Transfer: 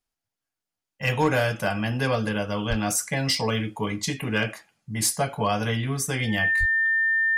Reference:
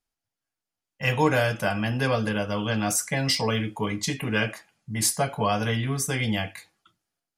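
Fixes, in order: clip repair -13.5 dBFS; band-stop 1.8 kHz, Q 30; 2.69–2.81 s: high-pass 140 Hz 24 dB/octave; 6.59–6.71 s: high-pass 140 Hz 24 dB/octave

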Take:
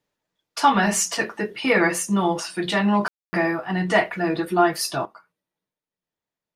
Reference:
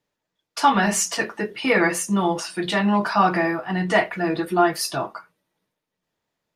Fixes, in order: room tone fill 3.08–3.33 s; gain correction +10.5 dB, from 5.05 s

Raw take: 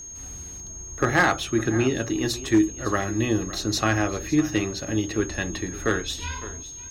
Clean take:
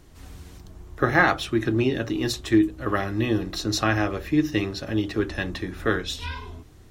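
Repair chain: clip repair -11.5 dBFS; band-stop 6.5 kHz, Q 30; inverse comb 558 ms -17 dB

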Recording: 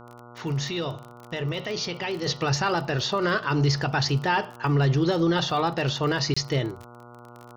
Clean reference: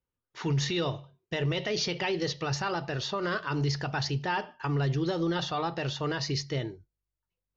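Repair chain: de-click; de-hum 120.2 Hz, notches 12; interpolate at 6.34 s, 25 ms; gain correction -6.5 dB, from 2.26 s

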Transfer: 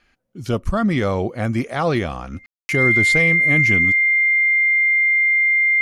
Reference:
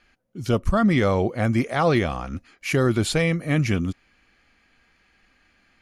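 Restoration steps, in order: band-stop 2.1 kHz, Q 30; room tone fill 2.46–2.69 s

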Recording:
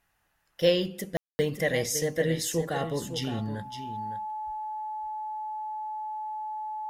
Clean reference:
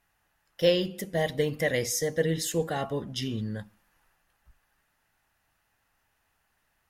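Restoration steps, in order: band-stop 860 Hz, Q 30; room tone fill 1.17–1.39 s; inverse comb 561 ms -10 dB

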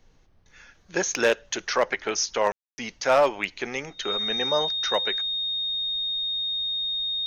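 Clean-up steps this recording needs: clip repair -12.5 dBFS; band-stop 3.7 kHz, Q 30; room tone fill 2.52–2.78 s; expander -50 dBFS, range -21 dB

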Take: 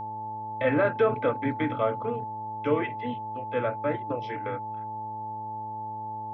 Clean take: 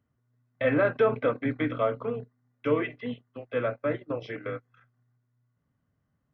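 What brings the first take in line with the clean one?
de-hum 108.3 Hz, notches 10; band-stop 870 Hz, Q 30

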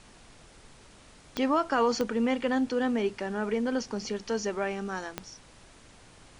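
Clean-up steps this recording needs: de-click; noise print and reduce 21 dB

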